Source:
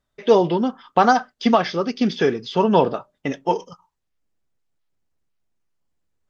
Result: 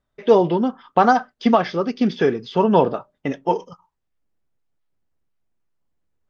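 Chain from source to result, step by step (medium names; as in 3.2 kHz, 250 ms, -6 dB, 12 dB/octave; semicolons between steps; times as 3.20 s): treble shelf 3.3 kHz -9.5 dB; trim +1 dB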